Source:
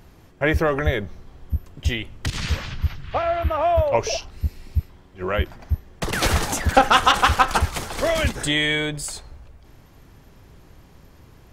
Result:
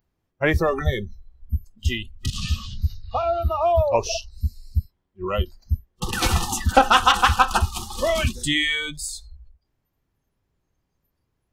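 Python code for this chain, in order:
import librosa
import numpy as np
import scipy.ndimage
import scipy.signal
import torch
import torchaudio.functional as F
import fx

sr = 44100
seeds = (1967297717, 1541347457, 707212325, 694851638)

y = fx.noise_reduce_blind(x, sr, reduce_db=26)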